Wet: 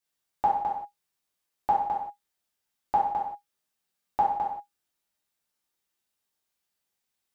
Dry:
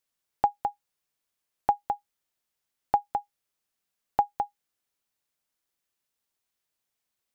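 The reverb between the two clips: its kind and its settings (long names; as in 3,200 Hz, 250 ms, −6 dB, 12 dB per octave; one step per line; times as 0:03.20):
reverb whose tail is shaped and stops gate 210 ms falling, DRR −7 dB
level −6.5 dB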